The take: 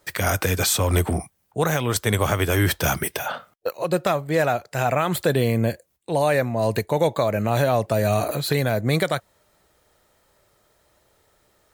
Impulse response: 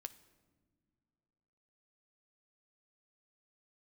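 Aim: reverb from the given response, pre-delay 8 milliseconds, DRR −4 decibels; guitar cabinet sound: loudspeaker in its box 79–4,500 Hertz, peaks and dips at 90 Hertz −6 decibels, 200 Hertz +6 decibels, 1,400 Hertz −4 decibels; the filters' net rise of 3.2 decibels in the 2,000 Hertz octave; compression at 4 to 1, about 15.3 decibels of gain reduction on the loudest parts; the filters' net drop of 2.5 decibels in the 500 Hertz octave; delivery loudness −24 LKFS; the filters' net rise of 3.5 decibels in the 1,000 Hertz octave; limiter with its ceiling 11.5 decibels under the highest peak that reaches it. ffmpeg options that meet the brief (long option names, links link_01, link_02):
-filter_complex "[0:a]equalizer=frequency=500:width_type=o:gain=-6,equalizer=frequency=1000:width_type=o:gain=7.5,equalizer=frequency=2000:width_type=o:gain=3.5,acompressor=threshold=-34dB:ratio=4,alimiter=level_in=3dB:limit=-24dB:level=0:latency=1,volume=-3dB,asplit=2[link_01][link_02];[1:a]atrim=start_sample=2205,adelay=8[link_03];[link_02][link_03]afir=irnorm=-1:irlink=0,volume=8.5dB[link_04];[link_01][link_04]amix=inputs=2:normalize=0,highpass=79,equalizer=frequency=90:width_type=q:width=4:gain=-6,equalizer=frequency=200:width_type=q:width=4:gain=6,equalizer=frequency=1400:width_type=q:width=4:gain=-4,lowpass=frequency=4500:width=0.5412,lowpass=frequency=4500:width=1.3066,volume=10dB"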